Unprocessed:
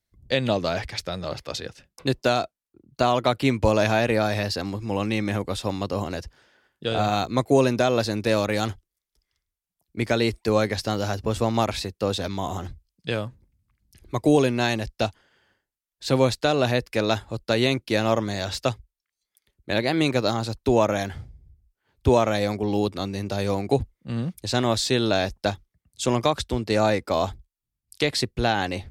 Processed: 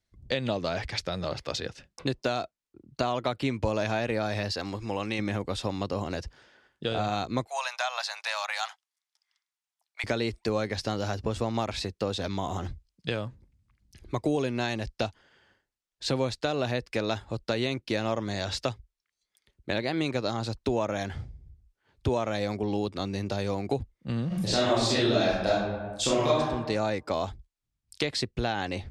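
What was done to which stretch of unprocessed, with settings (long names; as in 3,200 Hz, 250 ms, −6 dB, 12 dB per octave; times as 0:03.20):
0:04.52–0:05.19: parametric band 150 Hz −7 dB 2.8 octaves
0:07.47–0:10.04: Butterworth high-pass 730 Hz 48 dB per octave
0:24.27–0:26.39: thrown reverb, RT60 0.86 s, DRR −10 dB
whole clip: low-pass filter 7,700 Hz 12 dB per octave; downward compressor 2.5 to 1, threshold −30 dBFS; level +1.5 dB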